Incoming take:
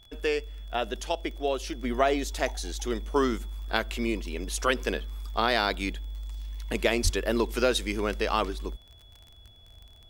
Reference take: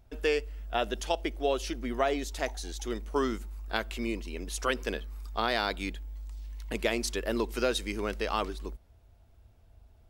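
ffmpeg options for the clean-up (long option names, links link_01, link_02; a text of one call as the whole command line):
ffmpeg -i in.wav -filter_complex "[0:a]adeclick=threshold=4,bandreject=frequency=3400:width=30,asplit=3[link_01][link_02][link_03];[link_01]afade=type=out:start_time=7.03:duration=0.02[link_04];[link_02]highpass=frequency=140:width=0.5412,highpass=frequency=140:width=1.3066,afade=type=in:start_time=7.03:duration=0.02,afade=type=out:start_time=7.15:duration=0.02[link_05];[link_03]afade=type=in:start_time=7.15:duration=0.02[link_06];[link_04][link_05][link_06]amix=inputs=3:normalize=0,asetnsamples=nb_out_samples=441:pad=0,asendcmd='1.84 volume volume -4dB',volume=0dB" out.wav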